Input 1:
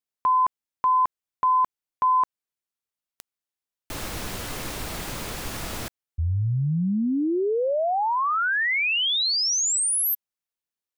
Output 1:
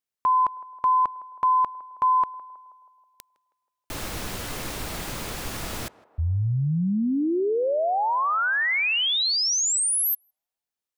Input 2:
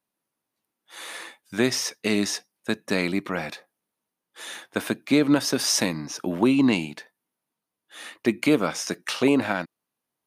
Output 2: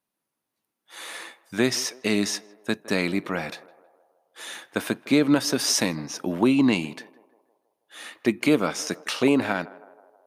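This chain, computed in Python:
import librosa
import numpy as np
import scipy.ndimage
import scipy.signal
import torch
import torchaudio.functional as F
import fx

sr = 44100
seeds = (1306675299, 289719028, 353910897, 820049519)

y = fx.echo_banded(x, sr, ms=160, feedback_pct=62, hz=680.0, wet_db=-17.5)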